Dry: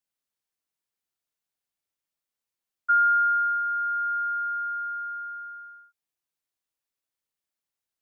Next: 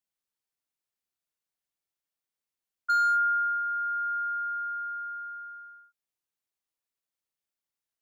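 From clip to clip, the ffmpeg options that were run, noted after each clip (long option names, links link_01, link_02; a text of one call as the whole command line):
ffmpeg -i in.wav -af "asoftclip=type=hard:threshold=-18dB,volume=-3dB" out.wav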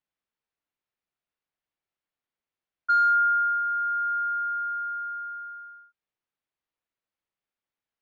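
ffmpeg -i in.wav -af "lowpass=2900,volume=3.5dB" out.wav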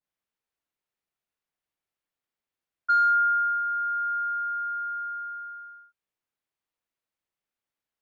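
ffmpeg -i in.wav -af "adynamicequalizer=threshold=0.0316:dfrequency=1600:dqfactor=0.7:tfrequency=1600:tqfactor=0.7:attack=5:release=100:ratio=0.375:range=1.5:mode=cutabove:tftype=highshelf" out.wav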